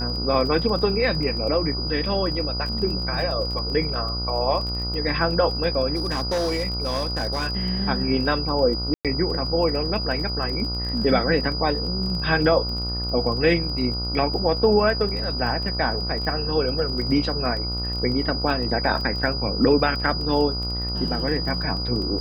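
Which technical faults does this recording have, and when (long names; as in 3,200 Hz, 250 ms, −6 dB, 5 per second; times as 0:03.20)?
mains buzz 60 Hz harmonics 24 −29 dBFS
surface crackle 21 per second −30 dBFS
whistle 4,900 Hz −28 dBFS
0:05.95–0:07.47: clipping −20 dBFS
0:08.94–0:09.05: drop-out 107 ms
0:18.50: drop-out 3.2 ms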